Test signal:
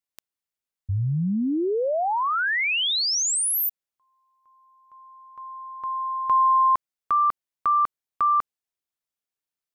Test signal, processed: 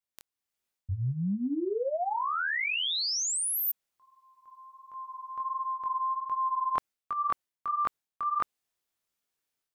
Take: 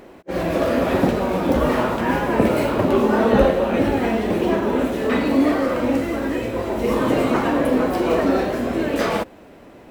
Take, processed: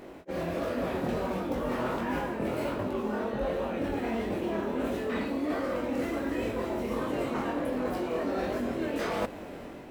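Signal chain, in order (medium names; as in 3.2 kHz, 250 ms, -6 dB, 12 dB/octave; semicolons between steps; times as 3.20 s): level rider gain up to 9 dB; chorus 1.4 Hz, delay 20 ms, depth 4.9 ms; reverse; compression 10:1, threshold -28 dBFS; reverse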